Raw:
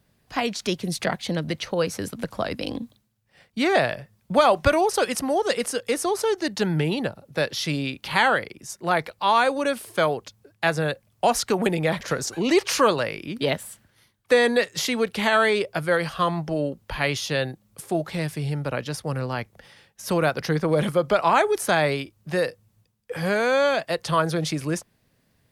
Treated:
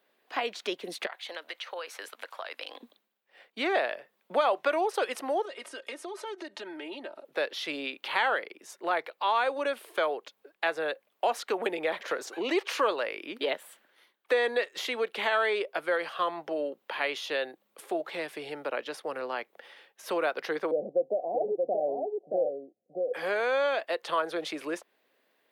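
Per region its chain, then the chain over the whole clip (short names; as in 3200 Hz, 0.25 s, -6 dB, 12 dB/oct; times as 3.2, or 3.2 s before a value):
1.06–2.83 HPF 890 Hz + compressor 10:1, threshold -31 dBFS
5.45–7.25 LPF 11000 Hz 24 dB/oct + comb 3.2 ms, depth 82% + compressor 10:1, threshold -33 dBFS
20.71–23.14 sample leveller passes 1 + rippled Chebyshev low-pass 760 Hz, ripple 6 dB + echo 0.628 s -4.5 dB
whole clip: HPF 350 Hz 24 dB/oct; compressor 1.5:1, threshold -35 dBFS; band shelf 7700 Hz -10.5 dB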